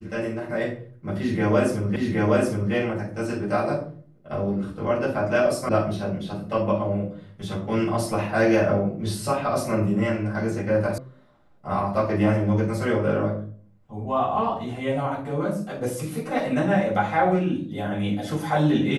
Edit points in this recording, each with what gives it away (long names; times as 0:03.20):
0:01.96: the same again, the last 0.77 s
0:05.69: cut off before it has died away
0:10.98: cut off before it has died away